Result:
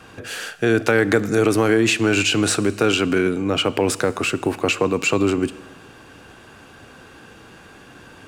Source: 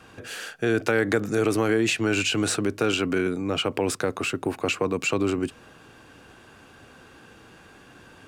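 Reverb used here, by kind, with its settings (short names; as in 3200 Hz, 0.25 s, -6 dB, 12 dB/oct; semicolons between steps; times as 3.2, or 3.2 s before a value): Schroeder reverb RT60 1.4 s, combs from 27 ms, DRR 17 dB; gain +5.5 dB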